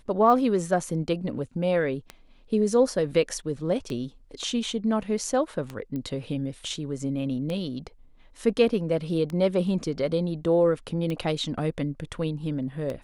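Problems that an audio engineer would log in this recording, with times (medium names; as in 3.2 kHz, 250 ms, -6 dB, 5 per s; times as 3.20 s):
tick 33 1/3 rpm -19 dBFS
5.96 s: pop -22 dBFS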